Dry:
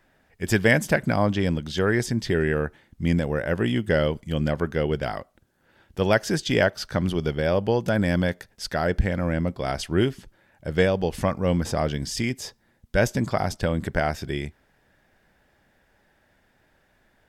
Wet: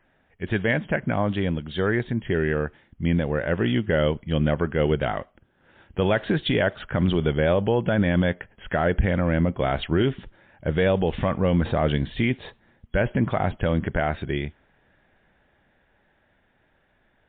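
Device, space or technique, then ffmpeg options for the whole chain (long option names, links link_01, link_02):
low-bitrate web radio: -af "dynaudnorm=framelen=600:gausssize=13:maxgain=14dB,alimiter=limit=-10.5dB:level=0:latency=1:release=32,volume=-1dB" -ar 8000 -c:a libmp3lame -b:a 32k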